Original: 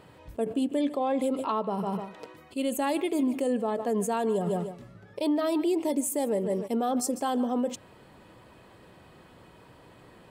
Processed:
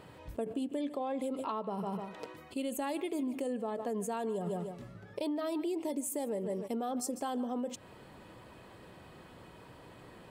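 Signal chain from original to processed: compression 3:1, threshold -35 dBFS, peak gain reduction 9.5 dB

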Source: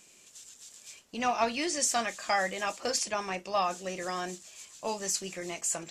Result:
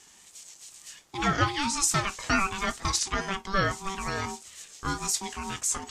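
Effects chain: wow and flutter 71 cents; ring modulator 580 Hz; trim +6 dB

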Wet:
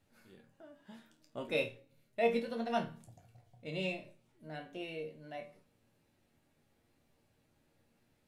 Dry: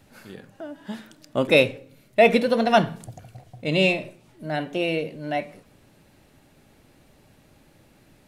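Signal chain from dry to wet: chord resonator D#2 minor, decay 0.24 s; trim -7.5 dB

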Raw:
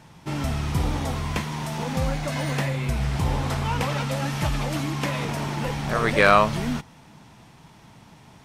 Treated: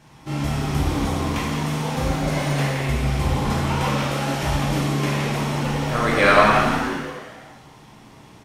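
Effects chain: frequency-shifting echo 172 ms, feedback 49%, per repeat +130 Hz, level -8 dB; gated-style reverb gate 370 ms falling, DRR -5 dB; trim -3.5 dB

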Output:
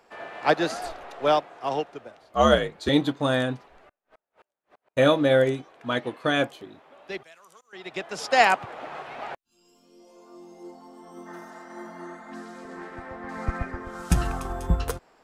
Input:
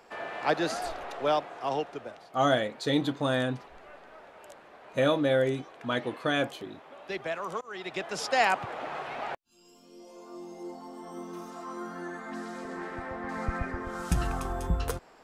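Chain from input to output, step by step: 2.21–2.89 s: frequency shift -61 Hz; 3.89–4.97 s: inverted gate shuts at -41 dBFS, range -37 dB; 7.23–7.73 s: pre-emphasis filter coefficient 0.9; 11.29–12.27 s: spectral replace 450–2100 Hz after; upward expansion 1.5:1, over -41 dBFS; trim +7 dB

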